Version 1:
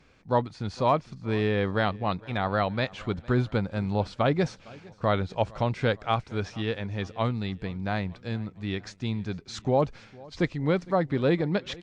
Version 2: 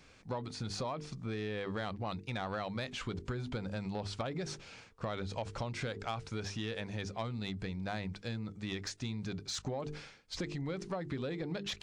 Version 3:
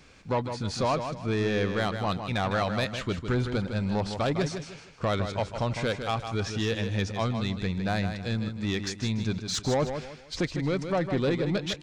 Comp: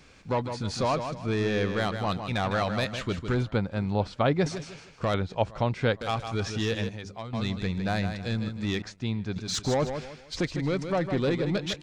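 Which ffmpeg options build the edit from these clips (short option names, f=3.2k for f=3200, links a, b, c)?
-filter_complex "[0:a]asplit=3[a][b][c];[2:a]asplit=5[d][e][f][g][h];[d]atrim=end=3.432[i];[a]atrim=start=3.428:end=4.462[j];[e]atrim=start=4.458:end=5.142[k];[b]atrim=start=5.138:end=6.012[l];[f]atrim=start=6.008:end=6.892[m];[1:a]atrim=start=6.888:end=7.332[n];[g]atrim=start=7.328:end=8.822[o];[c]atrim=start=8.818:end=9.362[p];[h]atrim=start=9.358[q];[i][j]acrossfade=d=0.004:c1=hsin:c2=hsin[r];[r][k]acrossfade=d=0.004:c1=hsin:c2=hsin[s];[s][l]acrossfade=d=0.004:c1=hsin:c2=hsin[t];[t][m]acrossfade=d=0.004:c1=hsin:c2=hsin[u];[u][n]acrossfade=d=0.004:c1=hsin:c2=hsin[v];[v][o]acrossfade=d=0.004:c1=hsin:c2=hsin[w];[w][p]acrossfade=d=0.004:c1=hsin:c2=hsin[x];[x][q]acrossfade=d=0.004:c1=hsin:c2=hsin"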